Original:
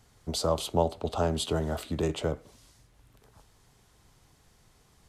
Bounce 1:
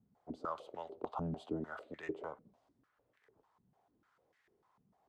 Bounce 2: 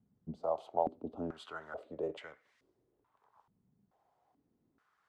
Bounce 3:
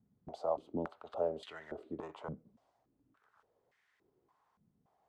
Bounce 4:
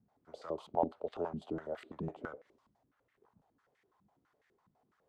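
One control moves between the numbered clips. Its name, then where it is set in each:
band-pass on a step sequencer, speed: 6.7, 2.3, 3.5, 12 Hertz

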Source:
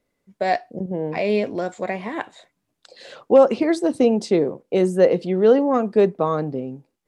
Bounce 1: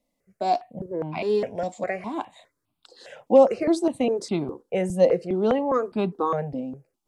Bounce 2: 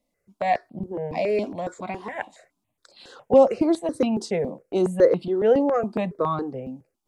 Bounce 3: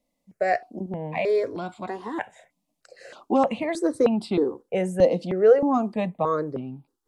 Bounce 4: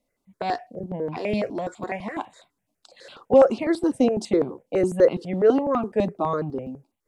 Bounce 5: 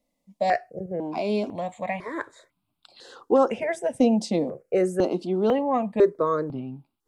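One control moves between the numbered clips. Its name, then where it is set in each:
step-sequenced phaser, speed: 4.9, 7.2, 3.2, 12, 2 Hertz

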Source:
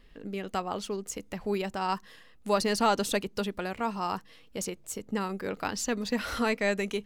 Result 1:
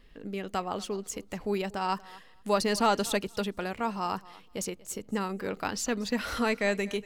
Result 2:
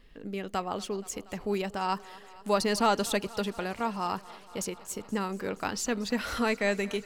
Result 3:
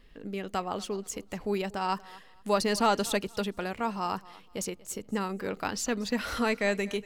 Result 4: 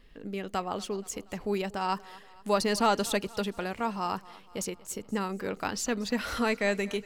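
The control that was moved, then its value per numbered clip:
feedback echo with a high-pass in the loop, feedback: 16, 80, 25, 54%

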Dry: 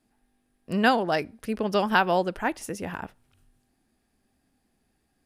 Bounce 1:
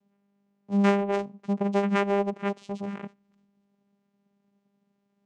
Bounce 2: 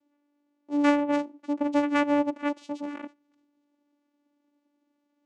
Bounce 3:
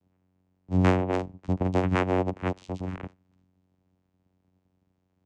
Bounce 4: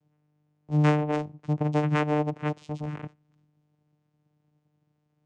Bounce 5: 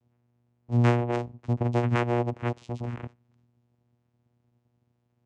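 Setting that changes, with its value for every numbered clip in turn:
channel vocoder, frequency: 200, 290, 92, 150, 120 Hertz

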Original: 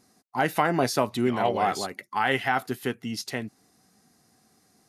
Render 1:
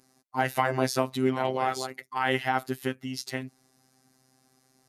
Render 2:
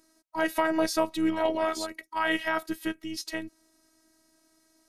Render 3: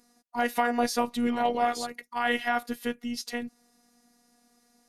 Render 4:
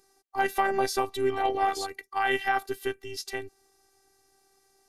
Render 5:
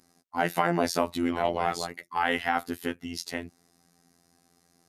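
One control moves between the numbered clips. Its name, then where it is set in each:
phases set to zero, frequency: 130, 320, 240, 390, 86 Hertz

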